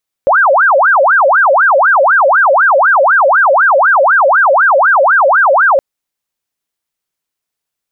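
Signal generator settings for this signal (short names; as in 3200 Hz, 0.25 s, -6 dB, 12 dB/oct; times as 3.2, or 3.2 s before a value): siren wail 530–1620 Hz 4/s sine -5 dBFS 5.52 s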